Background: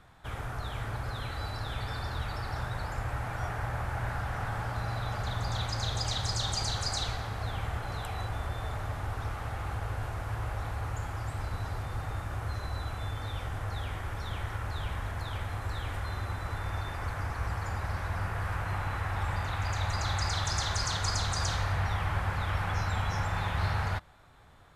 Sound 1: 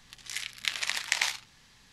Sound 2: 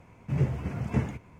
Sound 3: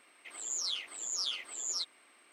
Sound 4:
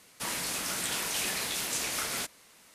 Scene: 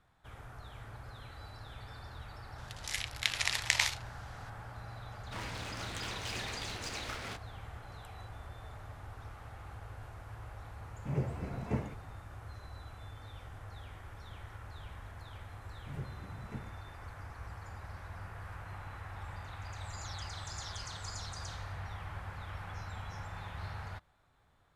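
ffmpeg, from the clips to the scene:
-filter_complex "[2:a]asplit=2[s0][s1];[0:a]volume=0.237[s2];[4:a]adynamicsmooth=sensitivity=4.5:basefreq=2000[s3];[s0]equalizer=f=600:t=o:w=2:g=6.5[s4];[1:a]atrim=end=1.92,asetpts=PTS-STARTPTS,volume=0.841,afade=t=in:d=0.004:c=hsin,afade=t=out:st=1.916:d=0.004:c=hsin,adelay=2580[s5];[s3]atrim=end=2.74,asetpts=PTS-STARTPTS,volume=0.562,afade=t=in:d=0.004:c=hsin,afade=t=out:st=2.736:d=0.004:c=hsin,adelay=5110[s6];[s4]atrim=end=1.39,asetpts=PTS-STARTPTS,volume=0.355,afade=t=in:d=0.004:c=hsin,afade=t=out:st=1.386:d=0.004:c=hsin,adelay=10770[s7];[s1]atrim=end=1.39,asetpts=PTS-STARTPTS,volume=0.141,afade=t=in:d=0.004:c=hsin,afade=t=out:st=1.386:d=0.004:c=hsin,adelay=15580[s8];[3:a]atrim=end=2.32,asetpts=PTS-STARTPTS,volume=0.15,afade=t=in:d=0.004:c=hsin,afade=t=out:st=2.316:d=0.004:c=hsin,adelay=19470[s9];[s2][s5][s6][s7][s8][s9]amix=inputs=6:normalize=0"

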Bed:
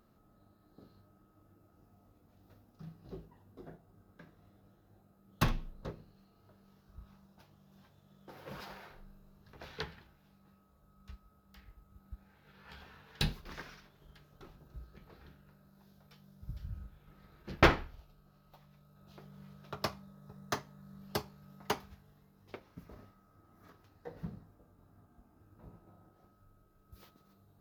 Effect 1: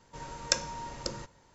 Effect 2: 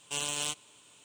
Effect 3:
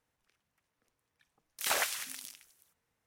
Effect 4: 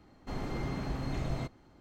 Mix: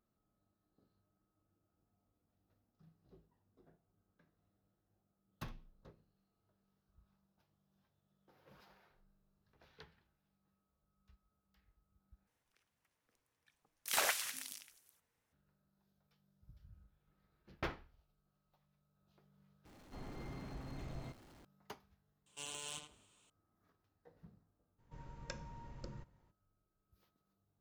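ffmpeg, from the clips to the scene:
-filter_complex "[0:a]volume=0.133[s0];[4:a]aeval=exprs='val(0)+0.5*0.00631*sgn(val(0))':c=same[s1];[2:a]asplit=2[s2][s3];[s3]adelay=80,lowpass=f=2600:p=1,volume=0.631,asplit=2[s4][s5];[s5]adelay=80,lowpass=f=2600:p=1,volume=0.23,asplit=2[s6][s7];[s7]adelay=80,lowpass=f=2600:p=1,volume=0.23[s8];[s2][s4][s6][s8]amix=inputs=4:normalize=0[s9];[1:a]bass=f=250:g=12,treble=f=4000:g=-12[s10];[s0]asplit=3[s11][s12][s13];[s11]atrim=end=12.274[s14];[3:a]atrim=end=3.06,asetpts=PTS-STARTPTS,volume=0.708[s15];[s12]atrim=start=15.326:end=19.654[s16];[s1]atrim=end=1.8,asetpts=PTS-STARTPTS,volume=0.211[s17];[s13]atrim=start=21.446[s18];[s9]atrim=end=1.04,asetpts=PTS-STARTPTS,volume=0.211,afade=t=in:d=0.004:c=hsin,afade=t=out:st=1.036:d=0.004:c=hsin,adelay=22260[s19];[s10]atrim=end=1.54,asetpts=PTS-STARTPTS,volume=0.158,afade=t=in:d=0.02,afade=t=out:st=1.52:d=0.02,adelay=24780[s20];[s14][s15]acrossfade=d=0.004:c1=hsin:c2=hsin[s21];[s21][s16]acrossfade=d=0.004:c1=hsin:c2=hsin[s22];[s22][s17]acrossfade=d=0.004:c1=hsin:c2=hsin[s23];[s23][s18]acrossfade=d=0.004:c1=hsin:c2=hsin[s24];[s24][s19][s20]amix=inputs=3:normalize=0"

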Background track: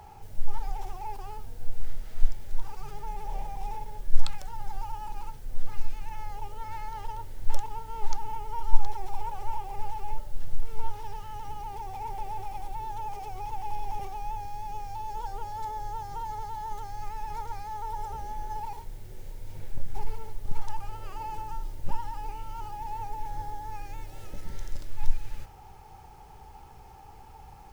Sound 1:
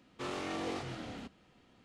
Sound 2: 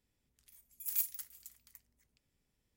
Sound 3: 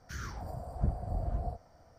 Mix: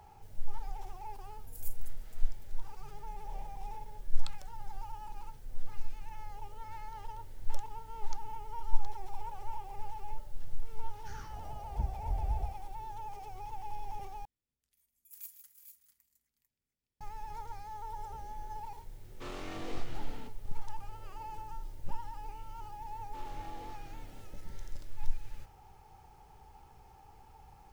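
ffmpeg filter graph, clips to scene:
-filter_complex "[2:a]asplit=2[s0][s1];[1:a]asplit=2[s2][s3];[0:a]volume=0.422[s4];[s0]equalizer=f=9100:w=1.5:g=5.5[s5];[3:a]asubboost=boost=11.5:cutoff=67[s6];[s1]aecho=1:1:112|155|372|419|446:0.15|0.266|0.119|0.168|0.376[s7];[s4]asplit=2[s8][s9];[s8]atrim=end=14.254[s10];[s7]atrim=end=2.76,asetpts=PTS-STARTPTS,volume=0.2[s11];[s9]atrim=start=17.006[s12];[s5]atrim=end=2.76,asetpts=PTS-STARTPTS,volume=0.178,afade=t=in:d=0.004:c=hsin,afade=t=out:st=2.756:d=0.004:c=hsin,adelay=670[s13];[s6]atrim=end=1.98,asetpts=PTS-STARTPTS,volume=0.376,afade=t=in:d=0.004:c=hsin,afade=t=out:st=1.976:d=0.004:c=hsin,adelay=10960[s14];[s2]atrim=end=1.84,asetpts=PTS-STARTPTS,volume=0.562,afade=t=in:d=0.004:c=hsin,afade=t=out:st=1.836:d=0.004:c=hsin,adelay=19010[s15];[s3]atrim=end=1.84,asetpts=PTS-STARTPTS,volume=0.2,afade=t=in:d=0.004:c=hsin,afade=t=out:st=1.836:d=0.004:c=hsin,adelay=22940[s16];[s10][s11]acrossfade=d=0.004:c1=hsin:c2=hsin[s17];[s17][s12]acrossfade=d=0.004:c1=hsin:c2=hsin[s18];[s18][s13][s14][s15][s16]amix=inputs=5:normalize=0"

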